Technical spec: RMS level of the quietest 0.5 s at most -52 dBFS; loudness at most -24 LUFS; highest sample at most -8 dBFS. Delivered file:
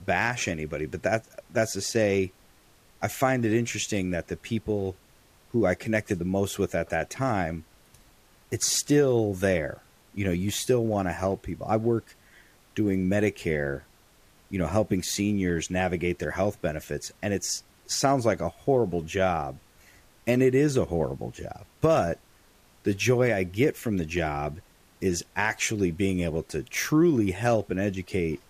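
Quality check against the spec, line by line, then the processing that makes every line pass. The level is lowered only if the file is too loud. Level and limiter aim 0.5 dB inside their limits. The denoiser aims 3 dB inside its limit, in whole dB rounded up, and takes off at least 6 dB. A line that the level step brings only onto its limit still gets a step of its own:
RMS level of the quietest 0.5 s -58 dBFS: pass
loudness -27.0 LUFS: pass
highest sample -9.0 dBFS: pass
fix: none needed

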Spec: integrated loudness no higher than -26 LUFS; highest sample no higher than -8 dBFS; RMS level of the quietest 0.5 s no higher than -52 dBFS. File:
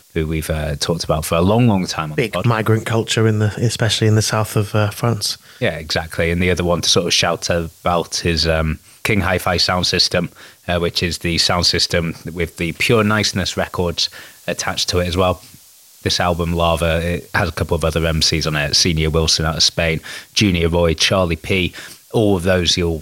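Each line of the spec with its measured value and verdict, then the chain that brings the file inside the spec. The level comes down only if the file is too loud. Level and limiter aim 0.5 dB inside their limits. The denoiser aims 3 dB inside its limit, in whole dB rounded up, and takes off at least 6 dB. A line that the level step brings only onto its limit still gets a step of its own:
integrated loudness -17.0 LUFS: fail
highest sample -3.0 dBFS: fail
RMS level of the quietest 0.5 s -46 dBFS: fail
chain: trim -9.5 dB

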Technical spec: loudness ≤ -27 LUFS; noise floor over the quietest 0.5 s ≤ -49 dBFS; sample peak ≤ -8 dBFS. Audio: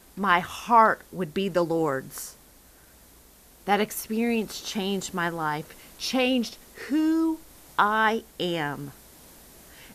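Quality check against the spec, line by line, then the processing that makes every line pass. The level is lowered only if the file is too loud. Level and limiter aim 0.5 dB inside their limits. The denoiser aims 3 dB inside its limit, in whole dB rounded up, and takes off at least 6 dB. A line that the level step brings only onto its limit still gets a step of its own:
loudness -25.5 LUFS: fail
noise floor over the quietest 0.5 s -54 dBFS: pass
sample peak -6.0 dBFS: fail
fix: trim -2 dB; peak limiter -8.5 dBFS

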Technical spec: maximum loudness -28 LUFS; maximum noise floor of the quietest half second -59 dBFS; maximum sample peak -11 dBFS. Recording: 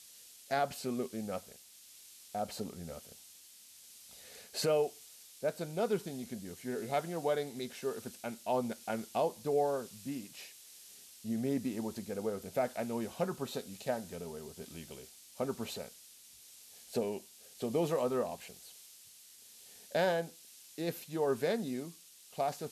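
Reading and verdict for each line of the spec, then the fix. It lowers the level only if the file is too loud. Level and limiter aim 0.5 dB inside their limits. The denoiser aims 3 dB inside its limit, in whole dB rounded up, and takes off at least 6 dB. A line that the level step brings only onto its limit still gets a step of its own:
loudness -36.5 LUFS: pass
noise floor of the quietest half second -57 dBFS: fail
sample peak -21.0 dBFS: pass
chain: noise reduction 6 dB, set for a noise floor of -57 dBFS

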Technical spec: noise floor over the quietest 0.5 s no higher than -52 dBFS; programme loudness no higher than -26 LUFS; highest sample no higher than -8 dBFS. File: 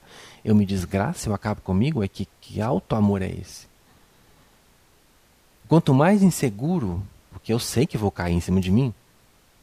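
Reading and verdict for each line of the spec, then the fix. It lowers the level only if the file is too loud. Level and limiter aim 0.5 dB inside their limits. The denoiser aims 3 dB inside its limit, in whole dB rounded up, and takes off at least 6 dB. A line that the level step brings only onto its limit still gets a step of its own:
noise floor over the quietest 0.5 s -58 dBFS: pass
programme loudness -23.0 LUFS: fail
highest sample -6.0 dBFS: fail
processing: trim -3.5 dB

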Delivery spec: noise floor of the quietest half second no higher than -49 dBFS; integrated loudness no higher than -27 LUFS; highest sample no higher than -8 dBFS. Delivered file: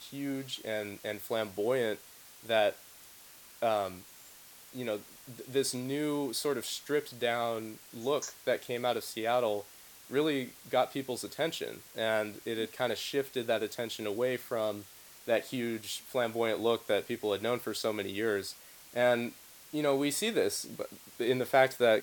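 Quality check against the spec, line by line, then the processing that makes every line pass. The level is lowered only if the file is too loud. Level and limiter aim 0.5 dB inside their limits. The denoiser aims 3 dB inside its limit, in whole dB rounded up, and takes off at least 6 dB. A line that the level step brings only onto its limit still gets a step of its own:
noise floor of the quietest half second -54 dBFS: pass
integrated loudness -33.0 LUFS: pass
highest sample -11.0 dBFS: pass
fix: none needed

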